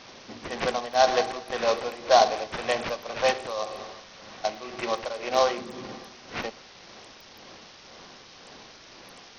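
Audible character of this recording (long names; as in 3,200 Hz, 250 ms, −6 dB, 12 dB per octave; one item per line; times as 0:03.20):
aliases and images of a low sample rate 5,000 Hz, jitter 20%
tremolo triangle 1.9 Hz, depth 75%
a quantiser's noise floor 8 bits, dither triangular
SBC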